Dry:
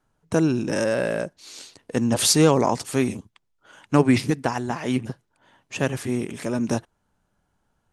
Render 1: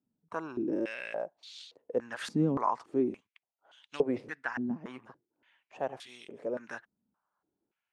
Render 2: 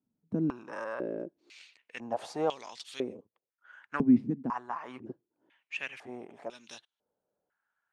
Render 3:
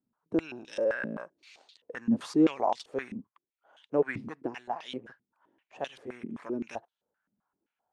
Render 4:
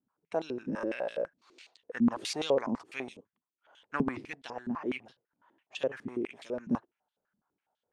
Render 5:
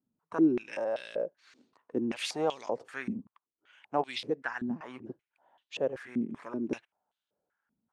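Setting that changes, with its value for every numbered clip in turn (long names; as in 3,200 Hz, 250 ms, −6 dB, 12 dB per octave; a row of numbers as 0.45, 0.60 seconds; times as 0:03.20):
band-pass on a step sequencer, speed: 3.5, 2, 7.7, 12, 5.2 Hertz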